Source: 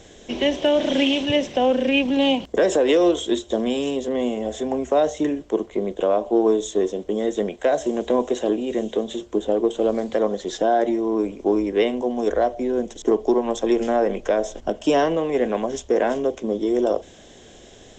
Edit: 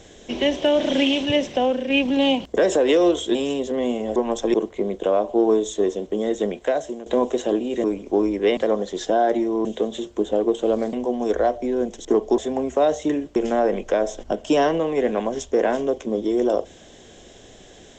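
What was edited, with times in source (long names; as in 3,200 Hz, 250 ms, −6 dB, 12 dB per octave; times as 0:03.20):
0:01.55–0:01.90: fade out, to −7.5 dB
0:03.35–0:03.72: remove
0:04.53–0:05.51: swap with 0:13.35–0:13.73
0:07.57–0:08.03: fade out, to −15 dB
0:08.81–0:10.09: swap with 0:11.17–0:11.90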